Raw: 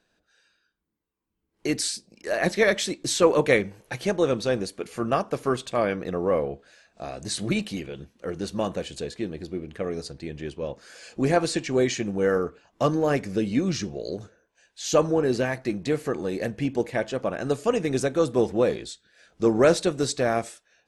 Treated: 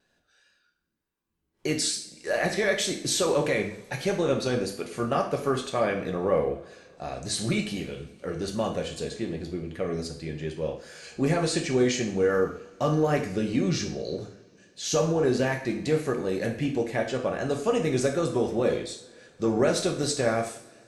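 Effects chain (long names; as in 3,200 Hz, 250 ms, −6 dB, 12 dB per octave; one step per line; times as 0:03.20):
brickwall limiter −15 dBFS, peak gain reduction 10 dB
pitch vibrato 2.6 Hz 45 cents
coupled-rooms reverb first 0.52 s, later 3.8 s, from −27 dB, DRR 2 dB
level −1.5 dB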